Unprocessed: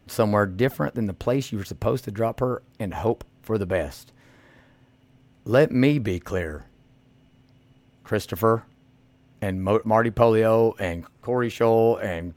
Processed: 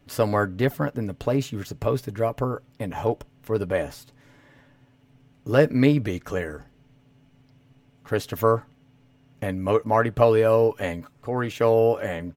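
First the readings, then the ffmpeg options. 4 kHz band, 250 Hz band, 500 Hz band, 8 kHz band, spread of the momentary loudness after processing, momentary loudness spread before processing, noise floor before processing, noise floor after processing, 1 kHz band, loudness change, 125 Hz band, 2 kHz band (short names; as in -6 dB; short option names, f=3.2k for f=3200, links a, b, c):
-0.5 dB, -1.5 dB, 0.0 dB, -1.0 dB, 14 LU, 12 LU, -59 dBFS, -59 dBFS, -0.5 dB, -0.5 dB, 0.0 dB, -0.5 dB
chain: -af "aecho=1:1:7:0.42,volume=-1.5dB"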